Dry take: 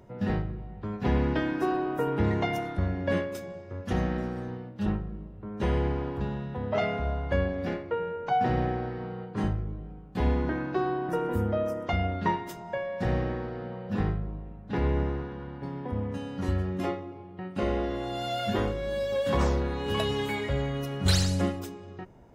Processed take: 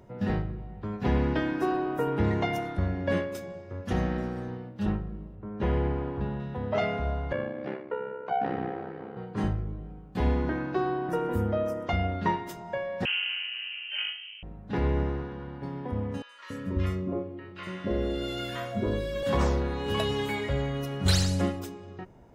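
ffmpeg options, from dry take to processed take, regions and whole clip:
-filter_complex "[0:a]asettb=1/sr,asplit=3[s0][s1][s2];[s0]atrim=end=5.354[s3];[s1]atrim=start=5.35:end=6.4,asetpts=PTS-STARTPTS,afade=t=in:d=0.004:c=qsin,afade=t=out:st=1.046:d=0.004:c=qsin,highshelf=f=8900:g=-3,adynamicsmooth=sensitivity=0.5:basefreq=3800[s4];[s2]atrim=start=6.396[s5];[s3][s4]acrossfade=d=0.004:c1=hsin:c2=qsin[s6];[s6][s5]acrossfade=d=0.004:c1=qsin:c2=hsin,asettb=1/sr,asplit=3[s7][s8][s9];[s7]atrim=end=7.324[s10];[s8]atrim=start=7.32:end=9.17,asetpts=PTS-STARTPTS,afade=t=in:d=0.004:c=qsin,afade=t=out:st=1.846:d=0.004:c=qsin,aeval=exprs='val(0)*sin(2*PI*33*n/s)':c=same,highpass=190,lowpass=2900[s11];[s9]atrim=start=9.166[s12];[s10][s11]acrossfade=d=0.004:c1=hsin:c2=qsin[s13];[s13][s12]acrossfade=d=0.004:c1=qsin:c2=hsin,asettb=1/sr,asplit=3[s14][s15][s16];[s14]atrim=end=13.054[s17];[s15]atrim=start=13.05:end=14.43,asetpts=PTS-STARTPTS,afade=t=in:d=0.004:c=qsin,afade=t=out:st=1.376:d=0.004:c=qsin,highpass=440,tiltshelf=f=1500:g=6.5,lowpass=f=2800:t=q:w=0.5098,lowpass=f=2800:t=q:w=0.6013,lowpass=f=2800:t=q:w=0.9,lowpass=f=2800:t=q:w=2.563,afreqshift=-3300[s18];[s16]atrim=start=14.426[s19];[s17][s18]acrossfade=d=0.004:c1=hsin:c2=qsin[s20];[s20][s19]acrossfade=d=0.004:c1=qsin:c2=hsin,asettb=1/sr,asplit=3[s21][s22][s23];[s21]atrim=end=16.224[s24];[s22]atrim=start=16.22:end=19.23,asetpts=PTS-STARTPTS,afade=t=in:d=0.004:c=qsin,afade=t=out:st=3.006:d=0.004:c=qsin,asuperstop=centerf=770:order=8:qfactor=4.7,acrossover=split=980|5100[s25][s26][s27];[s27]adelay=70[s28];[s25]adelay=280[s29];[s29][s26][s28]amix=inputs=3:normalize=0,atrim=end_sample=132741[s30];[s23]atrim=start=19.226[s31];[s24][s30]acrossfade=d=0.004:c1=hsin:c2=qsin[s32];[s32][s31]acrossfade=d=0.004:c1=qsin:c2=hsin"

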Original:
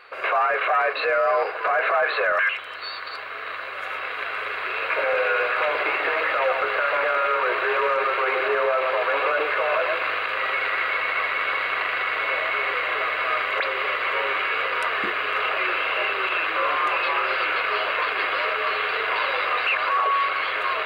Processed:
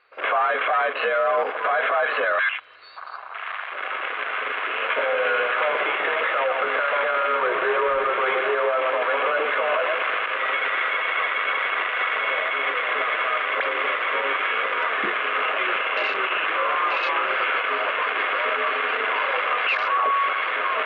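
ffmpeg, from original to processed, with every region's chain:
-filter_complex "[0:a]asettb=1/sr,asplit=3[s0][s1][s2];[s0]atrim=end=7.414[s3];[s1]atrim=start=7.41:end=8.2,asetpts=PTS-STARTPTS,afade=t=in:d=0.004:c=qsin,afade=t=out:st=0.786:d=0.004:c=qsin,aemphasis=mode=reproduction:type=bsi,bandreject=f=4900:w=28[s4];[s2]atrim=start=8.196[s5];[s3][s4]acrossfade=d=0.004:c1=hsin:c2=qsin[s6];[s6][s5]acrossfade=d=0.004:c1=qsin:c2=hsin,afwtdn=0.0355,alimiter=limit=0.15:level=0:latency=1:release=94,lowpass=f=5400:w=0.5412,lowpass=f=5400:w=1.3066,volume=1.41"

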